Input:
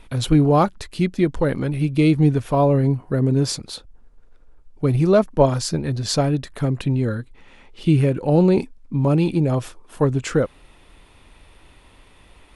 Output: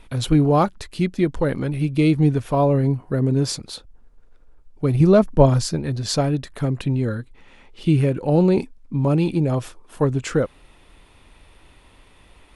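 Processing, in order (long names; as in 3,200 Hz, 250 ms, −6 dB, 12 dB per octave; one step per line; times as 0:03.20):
0:05.00–0:05.68: low-shelf EQ 230 Hz +8.5 dB
level −1 dB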